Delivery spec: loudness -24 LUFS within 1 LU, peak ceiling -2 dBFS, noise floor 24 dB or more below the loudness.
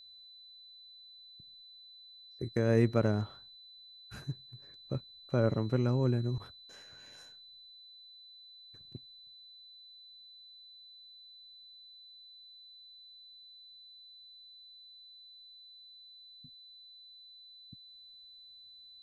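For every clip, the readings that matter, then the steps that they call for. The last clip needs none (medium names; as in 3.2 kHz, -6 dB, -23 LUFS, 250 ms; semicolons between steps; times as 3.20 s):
steady tone 4 kHz; tone level -52 dBFS; loudness -32.0 LUFS; peak level -14.5 dBFS; loudness target -24.0 LUFS
-> band-stop 4 kHz, Q 30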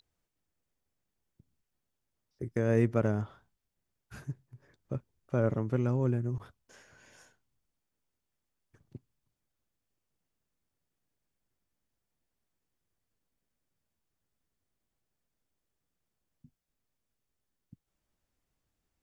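steady tone not found; loudness -32.0 LUFS; peak level -14.5 dBFS; loudness target -24.0 LUFS
-> trim +8 dB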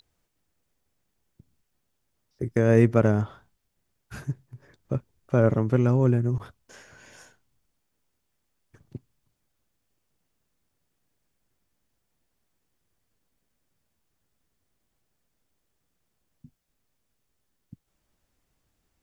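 loudness -24.0 LUFS; peak level -6.5 dBFS; noise floor -77 dBFS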